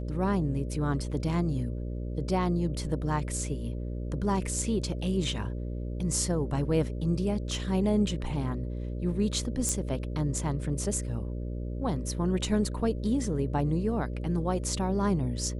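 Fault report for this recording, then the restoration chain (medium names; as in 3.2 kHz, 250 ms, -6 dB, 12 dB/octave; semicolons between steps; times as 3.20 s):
buzz 60 Hz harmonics 10 -34 dBFS
9.69 s: pop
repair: de-click; de-hum 60 Hz, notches 10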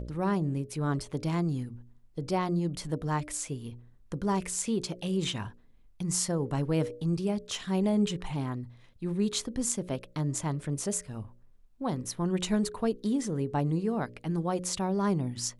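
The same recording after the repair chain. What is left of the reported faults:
nothing left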